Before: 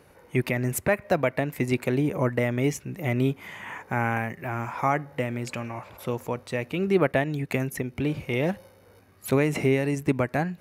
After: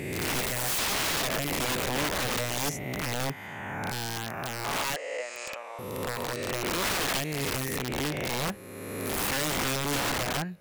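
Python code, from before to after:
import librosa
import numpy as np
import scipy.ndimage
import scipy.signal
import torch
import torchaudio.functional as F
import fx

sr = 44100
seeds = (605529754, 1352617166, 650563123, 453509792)

y = fx.spec_swells(x, sr, rise_s=2.0)
y = fx.leveller(y, sr, passes=1, at=(0.68, 1.2))
y = fx.cheby1_bandpass(y, sr, low_hz=540.0, high_hz=8300.0, order=3, at=(4.78, 5.79))
y = fx.peak_eq(y, sr, hz=810.0, db=-8.0, octaves=0.33, at=(6.33, 6.85))
y = (np.mod(10.0 ** (17.5 / 20.0) * y + 1.0, 2.0) - 1.0) / 10.0 ** (17.5 / 20.0)
y = F.gain(torch.from_numpy(y), -6.0).numpy()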